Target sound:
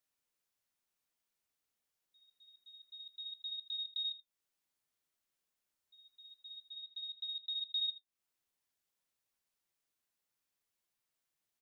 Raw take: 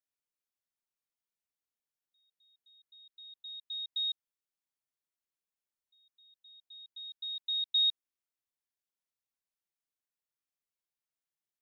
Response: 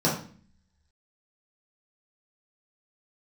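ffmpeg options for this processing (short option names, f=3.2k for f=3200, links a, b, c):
-filter_complex "[0:a]asplit=3[a][b][c];[a]afade=t=out:st=6.69:d=0.02[d];[b]lowpass=3.6k,afade=t=in:st=6.69:d=0.02,afade=t=out:st=7.59:d=0.02[e];[c]afade=t=in:st=7.59:d=0.02[f];[d][e][f]amix=inputs=3:normalize=0,acompressor=threshold=-49dB:ratio=2.5,flanger=delay=7.6:depth=7.6:regen=-51:speed=0.27:shape=triangular,asplit=2[g][h];[h]aecho=0:1:80:0.158[i];[g][i]amix=inputs=2:normalize=0,volume=10dB"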